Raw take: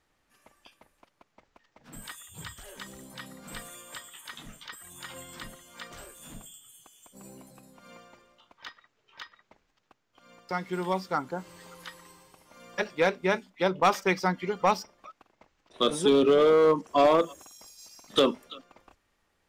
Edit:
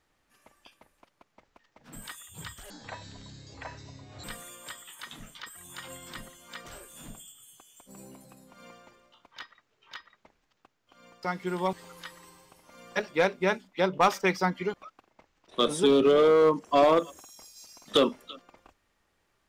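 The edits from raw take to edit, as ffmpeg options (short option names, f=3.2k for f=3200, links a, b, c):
-filter_complex "[0:a]asplit=5[a][b][c][d][e];[a]atrim=end=2.704[f];[b]atrim=start=2.7:end=3.5,asetpts=PTS-STARTPTS,asetrate=22932,aresample=44100,atrim=end_sample=67846,asetpts=PTS-STARTPTS[g];[c]atrim=start=3.496:end=10.992[h];[d]atrim=start=11.548:end=14.562[i];[e]atrim=start=14.958[j];[f][g]acrossfade=d=0.004:c1=hsin:c2=hsin[k];[k][h]acrossfade=d=0.004:c1=hsin:c2=hsin[l];[l][i]acrossfade=d=0.004:c1=hsin:c2=hsin[m];[m][j]acrossfade=d=0.004:c1=hsin:c2=hsin"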